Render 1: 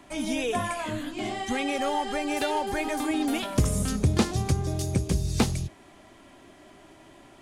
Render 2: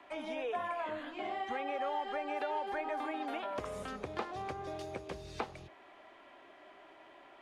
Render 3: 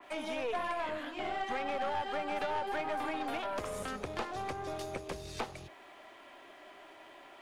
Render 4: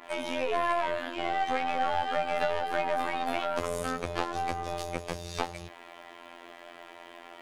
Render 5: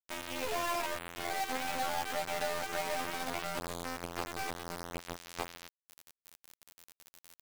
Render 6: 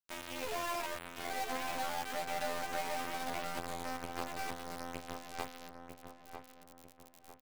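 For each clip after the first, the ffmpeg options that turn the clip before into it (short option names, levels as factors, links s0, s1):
-filter_complex "[0:a]acrossover=split=400 3500:gain=0.0891 1 0.0794[s0][s1][s2];[s0][s1][s2]amix=inputs=3:normalize=0,acrossover=split=550|1500[s3][s4][s5];[s3]acompressor=threshold=0.00891:ratio=4[s6];[s4]acompressor=threshold=0.0178:ratio=4[s7];[s5]acompressor=threshold=0.00355:ratio=4[s8];[s6][s7][s8]amix=inputs=3:normalize=0,volume=0.841"
-af "aeval=exprs='(tanh(44.7*val(0)+0.5)-tanh(0.5))/44.7':c=same,crystalizer=i=2:c=0,adynamicequalizer=threshold=0.00178:dfrequency=2900:dqfactor=0.7:tfrequency=2900:tqfactor=0.7:attack=5:release=100:ratio=0.375:range=1.5:mode=cutabove:tftype=highshelf,volume=1.68"
-af "afftfilt=real='hypot(re,im)*cos(PI*b)':imag='0':win_size=2048:overlap=0.75,volume=2.82"
-af "acrusher=bits=4:mix=0:aa=0.000001,volume=0.447"
-filter_complex "[0:a]asplit=2[s0][s1];[s1]adelay=948,lowpass=f=1700:p=1,volume=0.473,asplit=2[s2][s3];[s3]adelay=948,lowpass=f=1700:p=1,volume=0.44,asplit=2[s4][s5];[s5]adelay=948,lowpass=f=1700:p=1,volume=0.44,asplit=2[s6][s7];[s7]adelay=948,lowpass=f=1700:p=1,volume=0.44,asplit=2[s8][s9];[s9]adelay=948,lowpass=f=1700:p=1,volume=0.44[s10];[s0][s2][s4][s6][s8][s10]amix=inputs=6:normalize=0,volume=0.668"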